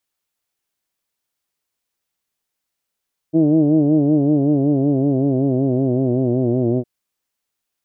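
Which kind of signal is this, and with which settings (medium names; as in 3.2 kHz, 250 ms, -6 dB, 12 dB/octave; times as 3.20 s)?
formant vowel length 3.51 s, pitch 156 Hz, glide -4.5 st, F1 320 Hz, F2 640 Hz, F3 2.9 kHz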